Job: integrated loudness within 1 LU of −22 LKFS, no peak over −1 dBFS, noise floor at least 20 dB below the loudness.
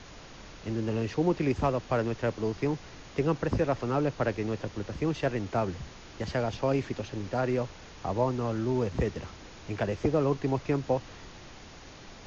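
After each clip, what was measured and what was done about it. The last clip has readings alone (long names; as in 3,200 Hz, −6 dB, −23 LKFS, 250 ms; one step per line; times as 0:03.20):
background noise floor −48 dBFS; target noise floor −51 dBFS; integrated loudness −30.5 LKFS; sample peak −14.5 dBFS; target loudness −22.0 LKFS
→ noise reduction from a noise print 6 dB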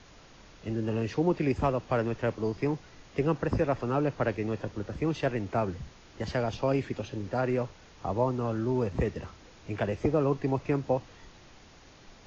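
background noise floor −54 dBFS; integrated loudness −30.5 LKFS; sample peak −14.5 dBFS; target loudness −22.0 LKFS
→ level +8.5 dB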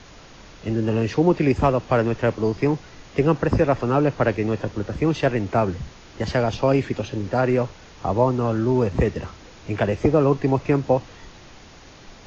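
integrated loudness −22.0 LKFS; sample peak −6.0 dBFS; background noise floor −46 dBFS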